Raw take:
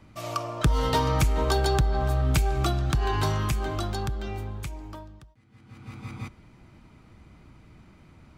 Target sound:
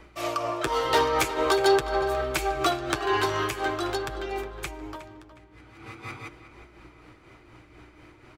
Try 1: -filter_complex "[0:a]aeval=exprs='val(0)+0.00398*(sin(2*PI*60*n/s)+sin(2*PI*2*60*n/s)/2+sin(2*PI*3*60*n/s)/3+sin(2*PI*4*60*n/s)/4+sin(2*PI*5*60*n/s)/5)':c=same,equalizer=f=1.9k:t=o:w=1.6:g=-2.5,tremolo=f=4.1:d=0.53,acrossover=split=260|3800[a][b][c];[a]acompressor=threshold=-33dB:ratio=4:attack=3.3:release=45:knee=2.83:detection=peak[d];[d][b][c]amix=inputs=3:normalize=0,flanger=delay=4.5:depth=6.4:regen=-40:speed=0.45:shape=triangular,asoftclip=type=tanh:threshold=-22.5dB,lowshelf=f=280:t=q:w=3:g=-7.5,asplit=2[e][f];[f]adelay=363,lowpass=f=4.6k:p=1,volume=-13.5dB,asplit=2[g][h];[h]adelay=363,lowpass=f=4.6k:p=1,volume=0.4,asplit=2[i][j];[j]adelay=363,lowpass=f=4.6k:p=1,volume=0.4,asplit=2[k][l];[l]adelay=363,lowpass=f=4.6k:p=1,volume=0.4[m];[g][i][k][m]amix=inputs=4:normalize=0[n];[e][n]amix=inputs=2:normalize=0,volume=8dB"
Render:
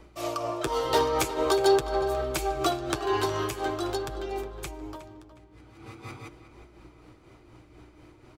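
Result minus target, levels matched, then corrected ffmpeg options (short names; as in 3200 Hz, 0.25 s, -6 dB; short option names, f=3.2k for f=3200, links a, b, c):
2000 Hz band -5.0 dB
-filter_complex "[0:a]aeval=exprs='val(0)+0.00398*(sin(2*PI*60*n/s)+sin(2*PI*2*60*n/s)/2+sin(2*PI*3*60*n/s)/3+sin(2*PI*4*60*n/s)/4+sin(2*PI*5*60*n/s)/5)':c=same,equalizer=f=1.9k:t=o:w=1.6:g=5.5,tremolo=f=4.1:d=0.53,acrossover=split=260|3800[a][b][c];[a]acompressor=threshold=-33dB:ratio=4:attack=3.3:release=45:knee=2.83:detection=peak[d];[d][b][c]amix=inputs=3:normalize=0,flanger=delay=4.5:depth=6.4:regen=-40:speed=0.45:shape=triangular,asoftclip=type=tanh:threshold=-22.5dB,lowshelf=f=280:t=q:w=3:g=-7.5,asplit=2[e][f];[f]adelay=363,lowpass=f=4.6k:p=1,volume=-13.5dB,asplit=2[g][h];[h]adelay=363,lowpass=f=4.6k:p=1,volume=0.4,asplit=2[i][j];[j]adelay=363,lowpass=f=4.6k:p=1,volume=0.4,asplit=2[k][l];[l]adelay=363,lowpass=f=4.6k:p=1,volume=0.4[m];[g][i][k][m]amix=inputs=4:normalize=0[n];[e][n]amix=inputs=2:normalize=0,volume=8dB"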